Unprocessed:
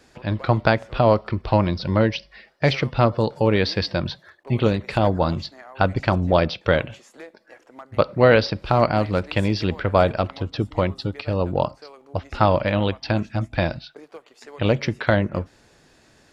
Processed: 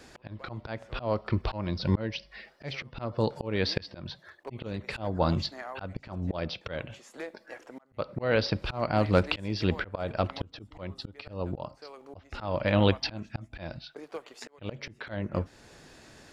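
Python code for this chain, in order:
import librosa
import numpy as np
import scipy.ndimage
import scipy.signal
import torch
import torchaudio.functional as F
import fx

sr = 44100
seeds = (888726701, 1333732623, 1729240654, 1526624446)

y = fx.auto_swell(x, sr, attack_ms=657.0)
y = y * librosa.db_to_amplitude(3.0)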